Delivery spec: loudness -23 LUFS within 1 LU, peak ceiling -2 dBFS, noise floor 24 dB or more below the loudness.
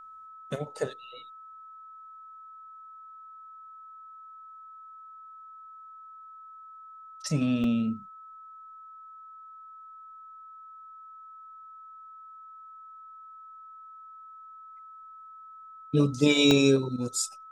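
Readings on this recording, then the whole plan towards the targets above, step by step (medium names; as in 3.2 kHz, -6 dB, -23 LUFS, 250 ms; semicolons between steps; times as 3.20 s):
dropouts 2; longest dropout 1.3 ms; steady tone 1.3 kHz; tone level -45 dBFS; loudness -26.0 LUFS; peak level -9.0 dBFS; loudness target -23.0 LUFS
-> interpolate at 7.64/16.51 s, 1.3 ms; band-stop 1.3 kHz, Q 30; trim +3 dB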